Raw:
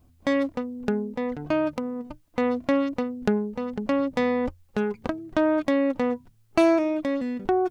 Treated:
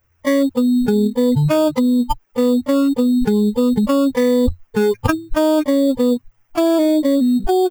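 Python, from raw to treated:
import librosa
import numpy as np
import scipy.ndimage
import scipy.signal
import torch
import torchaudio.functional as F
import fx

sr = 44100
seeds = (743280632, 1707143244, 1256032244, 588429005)

p1 = fx.bin_expand(x, sr, power=3.0)
p2 = fx.high_shelf(p1, sr, hz=4400.0, db=-11.0)
p3 = fx.sample_hold(p2, sr, seeds[0], rate_hz=4000.0, jitter_pct=0)
p4 = p2 + F.gain(torch.from_numpy(p3), -3.0).numpy()
p5 = fx.env_flatten(p4, sr, amount_pct=100)
y = F.gain(torch.from_numpy(p5), -1.0).numpy()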